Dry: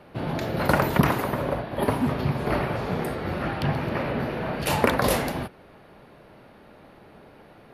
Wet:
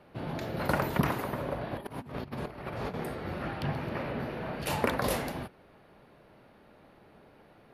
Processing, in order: 1.61–2.94 negative-ratio compressor -30 dBFS, ratio -0.5; gain -7.5 dB

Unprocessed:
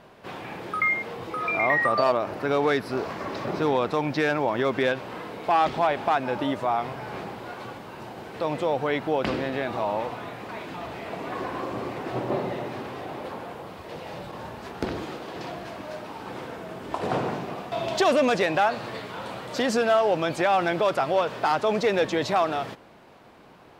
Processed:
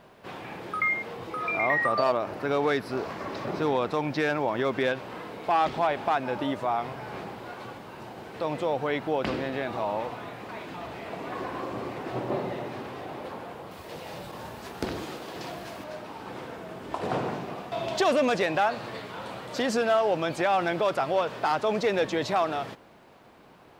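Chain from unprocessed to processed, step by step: bit-crush 12-bit; 13.71–15.84 high shelf 5200 Hz +9.5 dB; gain -2.5 dB

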